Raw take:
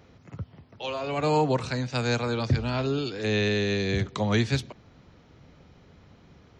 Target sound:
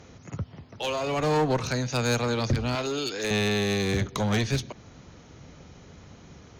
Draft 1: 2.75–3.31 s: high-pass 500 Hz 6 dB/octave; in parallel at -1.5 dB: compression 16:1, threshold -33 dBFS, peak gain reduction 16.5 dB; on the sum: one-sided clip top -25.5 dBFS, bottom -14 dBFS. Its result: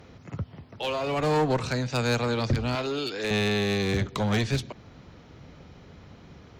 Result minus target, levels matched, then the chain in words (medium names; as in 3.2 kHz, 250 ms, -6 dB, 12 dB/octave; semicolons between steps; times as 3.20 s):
8 kHz band -5.5 dB
2.75–3.31 s: high-pass 500 Hz 6 dB/octave; in parallel at -1.5 dB: compression 16:1, threshold -33 dBFS, peak gain reduction 16.5 dB + resonant low-pass 6.6 kHz, resonance Q 14; on the sum: one-sided clip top -25.5 dBFS, bottom -14 dBFS